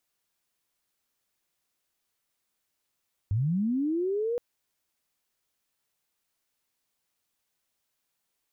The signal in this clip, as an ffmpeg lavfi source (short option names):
-f lavfi -i "aevalsrc='pow(10,(-23-3*t/1.07)/20)*sin(2*PI*(93*t+397*t*t/(2*1.07)))':d=1.07:s=44100"